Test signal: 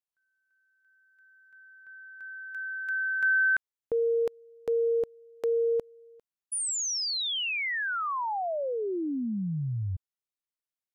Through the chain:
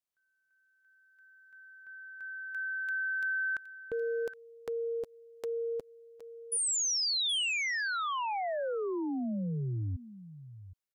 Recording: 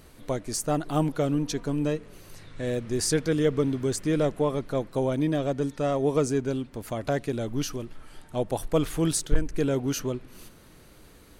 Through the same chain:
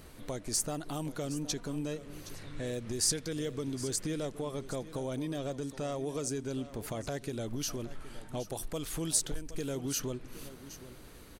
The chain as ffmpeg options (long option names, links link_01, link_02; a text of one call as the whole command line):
ffmpeg -i in.wav -filter_complex "[0:a]acrossover=split=3700[link_01][link_02];[link_01]acompressor=threshold=-31dB:ratio=6:attack=0.37:release=215:knee=1:detection=rms[link_03];[link_03][link_02]amix=inputs=2:normalize=0,aecho=1:1:768:0.178" out.wav